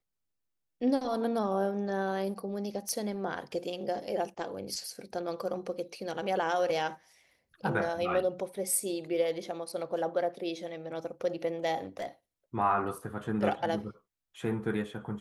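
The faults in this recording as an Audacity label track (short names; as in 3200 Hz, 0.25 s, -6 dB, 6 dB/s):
2.890000	2.890000	pop -21 dBFS
11.840000	12.070000	clipped -32.5 dBFS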